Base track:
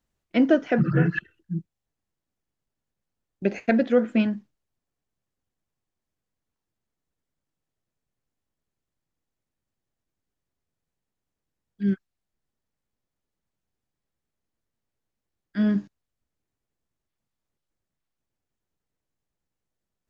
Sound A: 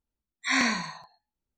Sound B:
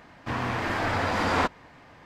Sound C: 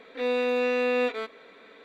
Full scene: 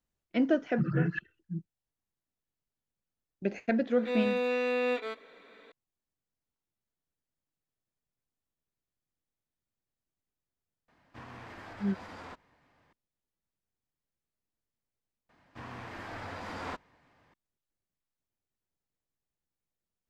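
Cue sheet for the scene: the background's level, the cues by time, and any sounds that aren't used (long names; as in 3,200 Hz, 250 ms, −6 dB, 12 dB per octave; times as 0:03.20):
base track −7.5 dB
0:03.88: mix in C −4.5 dB
0:10.88: mix in B −17 dB + brickwall limiter −21 dBFS
0:15.29: overwrite with B −15 dB
not used: A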